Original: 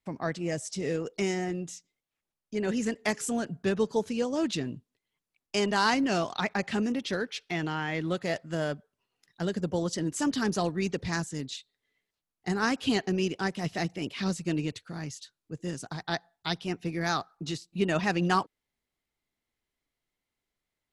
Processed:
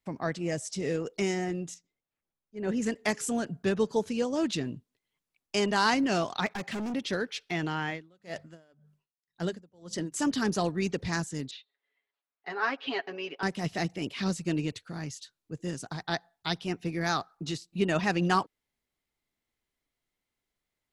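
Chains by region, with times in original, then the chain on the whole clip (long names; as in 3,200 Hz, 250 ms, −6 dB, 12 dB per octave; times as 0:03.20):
0:01.74–0:02.82: high-shelf EQ 2,100 Hz −9.5 dB + volume swells 151 ms
0:06.46–0:06.94: high-pass filter 120 Hz + hard clipping −31.5 dBFS
0:07.88–0:10.14: mains-hum notches 50/100/150/200 Hz + tremolo with a sine in dB 1.9 Hz, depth 33 dB
0:11.51–0:13.43: band-pass filter 590–4,600 Hz + high-frequency loss of the air 220 metres + comb filter 7.2 ms, depth 77%
whole clip: no processing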